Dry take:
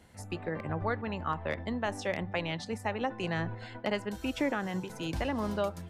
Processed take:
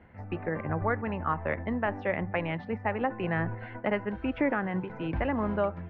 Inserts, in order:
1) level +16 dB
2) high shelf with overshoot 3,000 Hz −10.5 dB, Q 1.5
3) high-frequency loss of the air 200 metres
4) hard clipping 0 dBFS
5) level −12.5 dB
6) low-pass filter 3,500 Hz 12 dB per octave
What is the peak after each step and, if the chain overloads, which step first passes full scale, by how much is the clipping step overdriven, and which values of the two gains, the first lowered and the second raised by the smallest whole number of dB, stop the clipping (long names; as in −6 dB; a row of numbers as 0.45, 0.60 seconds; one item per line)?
−2.5, −1.5, −2.5, −2.5, −15.0, −15.0 dBFS
no step passes full scale